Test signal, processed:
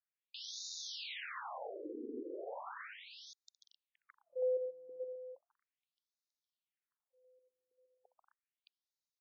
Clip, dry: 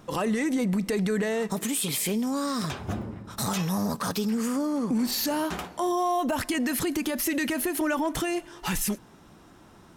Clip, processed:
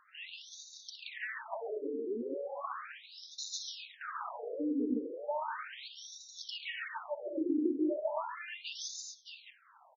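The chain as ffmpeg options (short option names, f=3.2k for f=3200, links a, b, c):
-af "aecho=1:1:64|139|189|231|261|617:0.2|0.631|0.316|0.376|0.316|0.501,afftfilt=real='re*between(b*sr/1024,340*pow(5100/340,0.5+0.5*sin(2*PI*0.36*pts/sr))/1.41,340*pow(5100/340,0.5+0.5*sin(2*PI*0.36*pts/sr))*1.41)':imag='im*between(b*sr/1024,340*pow(5100/340,0.5+0.5*sin(2*PI*0.36*pts/sr))/1.41,340*pow(5100/340,0.5+0.5*sin(2*PI*0.36*pts/sr))*1.41)':win_size=1024:overlap=0.75,volume=-4.5dB"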